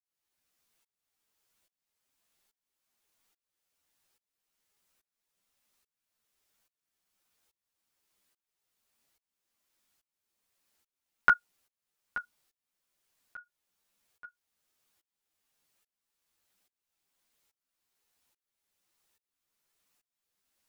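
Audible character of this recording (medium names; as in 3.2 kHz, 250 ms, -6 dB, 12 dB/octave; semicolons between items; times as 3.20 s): tremolo saw up 1.2 Hz, depth 100%; a shimmering, thickened sound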